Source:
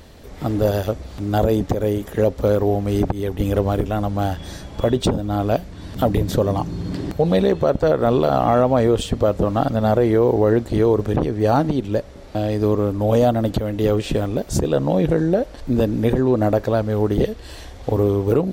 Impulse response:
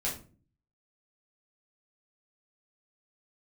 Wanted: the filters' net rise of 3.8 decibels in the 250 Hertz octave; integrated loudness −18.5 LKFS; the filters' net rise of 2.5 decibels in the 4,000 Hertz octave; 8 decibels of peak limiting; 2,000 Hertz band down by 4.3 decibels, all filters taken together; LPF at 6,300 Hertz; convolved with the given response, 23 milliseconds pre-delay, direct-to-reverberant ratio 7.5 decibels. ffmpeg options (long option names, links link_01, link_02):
-filter_complex "[0:a]lowpass=6300,equalizer=frequency=250:width_type=o:gain=5,equalizer=frequency=2000:width_type=o:gain=-7.5,equalizer=frequency=4000:width_type=o:gain=6,alimiter=limit=-11dB:level=0:latency=1,asplit=2[link_01][link_02];[1:a]atrim=start_sample=2205,adelay=23[link_03];[link_02][link_03]afir=irnorm=-1:irlink=0,volume=-12dB[link_04];[link_01][link_04]amix=inputs=2:normalize=0,volume=2dB"